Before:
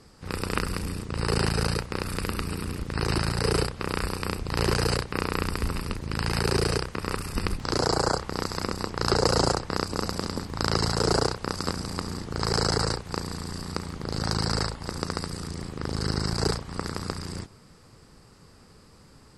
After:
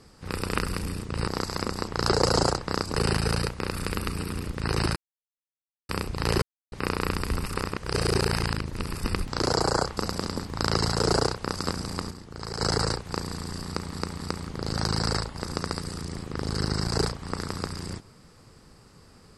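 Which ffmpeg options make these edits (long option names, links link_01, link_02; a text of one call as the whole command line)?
ffmpeg -i in.wav -filter_complex "[0:a]asplit=14[link_01][link_02][link_03][link_04][link_05][link_06][link_07][link_08][link_09][link_10][link_11][link_12][link_13][link_14];[link_01]atrim=end=1.272[link_15];[link_02]atrim=start=8.288:end=9.972[link_16];[link_03]atrim=start=1.268:end=3.28,asetpts=PTS-STARTPTS,afade=type=out:start_time=2.008:duration=0.004:curve=hsin[link_17];[link_04]atrim=start=3.28:end=4.21,asetpts=PTS-STARTPTS,volume=0[link_18];[link_05]atrim=start=4.21:end=4.74,asetpts=PTS-STARTPTS,afade=type=in:duration=0.004:curve=hsin,afade=type=out:start_time=0.526:duration=0.004:curve=hsin[link_19];[link_06]atrim=start=4.74:end=5.04,asetpts=PTS-STARTPTS,volume=0[link_20];[link_07]atrim=start=5.04:end=5.782,asetpts=PTS-STARTPTS,afade=type=in:duration=0.004:curve=hsin[link_21];[link_08]atrim=start=5.778:end=7.262,asetpts=PTS-STARTPTS,areverse[link_22];[link_09]atrim=start=7.258:end=8.292[link_23];[link_10]atrim=start=9.968:end=12.11,asetpts=PTS-STARTPTS,afade=type=out:start_time=1.882:duration=0.26:curve=log:silence=0.354813[link_24];[link_11]atrim=start=12.11:end=12.6,asetpts=PTS-STARTPTS,volume=-9dB[link_25];[link_12]atrim=start=12.6:end=13.932,asetpts=PTS-STARTPTS,afade=type=in:duration=0.26:curve=log:silence=0.354813[link_26];[link_13]atrim=start=13.658:end=13.932[link_27];[link_14]atrim=start=13.658[link_28];[link_15][link_16]acrossfade=duration=0.004:curve1=hsin:curve2=hsin[link_29];[link_17][link_18][link_19][link_20][link_21]concat=n=5:v=0:a=1[link_30];[link_29][link_30]acrossfade=duration=0.004:curve1=hsin:curve2=hsin[link_31];[link_31][link_22]acrossfade=duration=0.004:curve1=hsin:curve2=hsin[link_32];[link_32][link_23]acrossfade=duration=0.004:curve1=hsin:curve2=hsin[link_33];[link_24][link_25][link_26]concat=n=3:v=0:a=1[link_34];[link_33][link_34]acrossfade=duration=0.004:curve1=hsin:curve2=hsin[link_35];[link_35][link_27]acrossfade=duration=0.004:curve1=hsin:curve2=hsin[link_36];[link_36][link_28]acrossfade=duration=0.004:curve1=hsin:curve2=hsin" out.wav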